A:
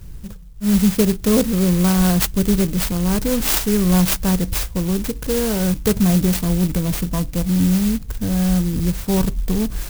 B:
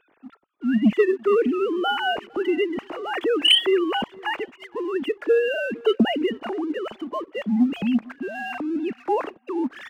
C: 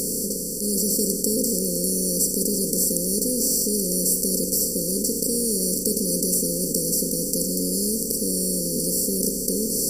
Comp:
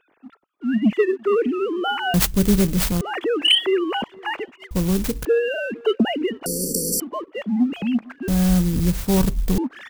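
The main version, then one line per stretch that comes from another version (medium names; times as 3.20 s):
B
2.14–3.01 s: from A
4.71–5.25 s: from A
6.46–7.00 s: from C
8.28–9.58 s: from A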